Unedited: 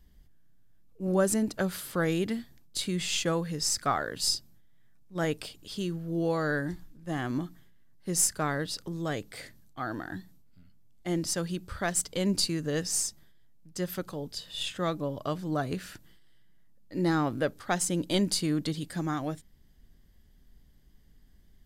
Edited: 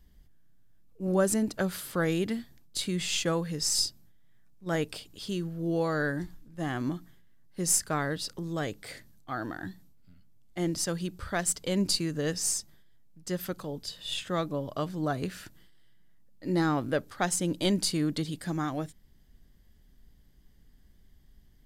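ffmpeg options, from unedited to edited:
-filter_complex "[0:a]asplit=2[a][b];[a]atrim=end=3.752[c];[b]atrim=start=4.238[d];[c][d]acrossfade=d=0.004:c1=hsin:c2=hsin"

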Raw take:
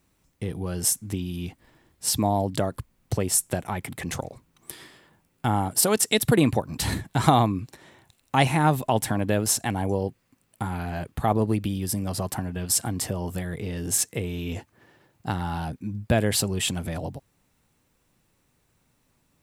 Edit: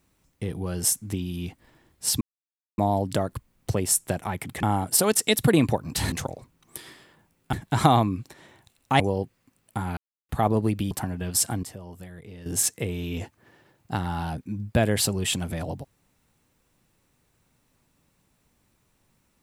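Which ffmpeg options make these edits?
-filter_complex "[0:a]asplit=11[a][b][c][d][e][f][g][h][i][j][k];[a]atrim=end=2.21,asetpts=PTS-STARTPTS,afade=t=out:st=2.206:d=0.004:c=hsin,apad=pad_dur=0.57[l];[b]atrim=start=2.21:end=4.062,asetpts=PTS-STARTPTS,afade=t=in:d=0.004:c=hsin[m];[c]atrim=start=5.468:end=6.962[n];[d]atrim=start=4.058:end=5.472[o];[e]atrim=start=6.958:end=8.432[p];[f]atrim=start=9.848:end=10.82,asetpts=PTS-STARTPTS,afade=t=out:st=0.968:d=0.004:c=hsin[q];[g]atrim=start=10.82:end=11.14,asetpts=PTS-STARTPTS,volume=0[r];[h]atrim=start=11.14:end=11.762,asetpts=PTS-STARTPTS,afade=t=in:d=0.004:c=hsin[s];[i]atrim=start=12.258:end=12.982[t];[j]atrim=start=12.978:end=13.812,asetpts=PTS-STARTPTS,volume=-11.5dB[u];[k]atrim=start=13.808[v];[l][m]concat=n=2:v=0:a=1[w];[w][n]acrossfade=d=0.004:c1=hsin:c2=hsin[x];[x][o]acrossfade=d=0.004:c1=hsin:c2=hsin[y];[y][p]acrossfade=d=0.004:c1=hsin:c2=hsin[z];[q][r][s]concat=n=3:v=0:a=1[aa];[z][aa]acrossfade=d=0.004:c1=hsin:c2=hsin[ab];[ab][t]acrossfade=d=0.004:c1=hsin:c2=hsin[ac];[ac][u]acrossfade=d=0.004:c1=hsin:c2=hsin[ad];[ad][v]acrossfade=d=0.004:c1=hsin:c2=hsin"

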